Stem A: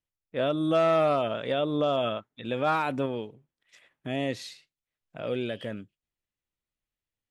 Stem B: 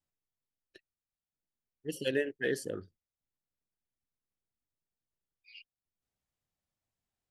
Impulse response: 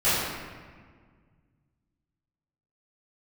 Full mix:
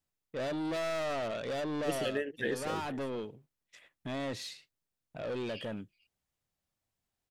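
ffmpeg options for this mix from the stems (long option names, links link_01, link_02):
-filter_complex "[0:a]asoftclip=type=tanh:threshold=-32.5dB,agate=range=-33dB:threshold=-57dB:ratio=3:detection=peak,volume=0dB[link_01];[1:a]volume=3dB,asplit=2[link_02][link_03];[link_03]volume=-23.5dB,aecho=0:1:450:1[link_04];[link_01][link_02][link_04]amix=inputs=3:normalize=0,alimiter=limit=-22dB:level=0:latency=1:release=429"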